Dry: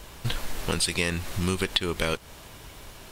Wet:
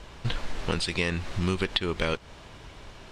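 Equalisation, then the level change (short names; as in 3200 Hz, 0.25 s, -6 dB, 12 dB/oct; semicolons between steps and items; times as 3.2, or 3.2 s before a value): air absorption 100 m; 0.0 dB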